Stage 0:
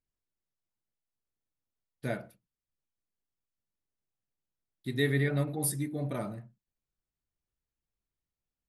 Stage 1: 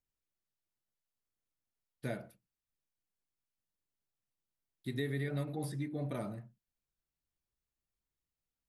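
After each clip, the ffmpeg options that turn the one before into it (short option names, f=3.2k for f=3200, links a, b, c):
-filter_complex "[0:a]acrossover=split=780|2300|4600[a][b][c][d];[a]acompressor=threshold=-31dB:ratio=4[e];[b]acompressor=threshold=-46dB:ratio=4[f];[c]acompressor=threshold=-50dB:ratio=4[g];[d]acompressor=threshold=-54dB:ratio=4[h];[e][f][g][h]amix=inputs=4:normalize=0,volume=-2.5dB"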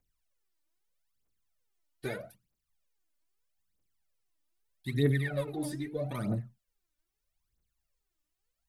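-af "aphaser=in_gain=1:out_gain=1:delay=3.5:decay=0.76:speed=0.79:type=triangular,volume=2dB"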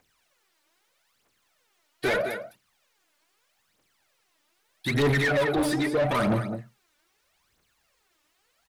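-filter_complex "[0:a]aecho=1:1:208:0.2,asplit=2[a][b];[b]highpass=f=720:p=1,volume=30dB,asoftclip=type=tanh:threshold=-15dB[c];[a][c]amix=inputs=2:normalize=0,lowpass=f=2.7k:p=1,volume=-6dB"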